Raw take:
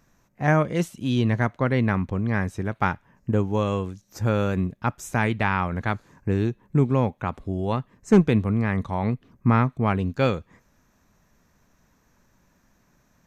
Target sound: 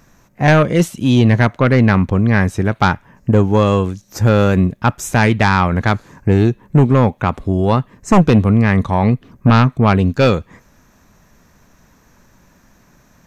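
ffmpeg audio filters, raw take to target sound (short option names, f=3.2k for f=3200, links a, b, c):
-af "aeval=exprs='0.596*sin(PI/2*2.51*val(0)/0.596)':c=same"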